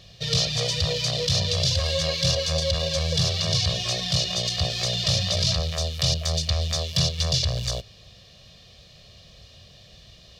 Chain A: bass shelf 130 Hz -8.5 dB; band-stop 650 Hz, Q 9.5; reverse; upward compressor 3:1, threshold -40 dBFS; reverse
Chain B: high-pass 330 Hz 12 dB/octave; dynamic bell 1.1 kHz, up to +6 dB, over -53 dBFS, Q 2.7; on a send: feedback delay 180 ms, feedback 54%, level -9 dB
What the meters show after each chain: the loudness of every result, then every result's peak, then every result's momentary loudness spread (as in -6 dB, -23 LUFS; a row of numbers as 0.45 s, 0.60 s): -24.0 LUFS, -23.5 LUFS; -11.5 dBFS, -10.5 dBFS; 4 LU, 4 LU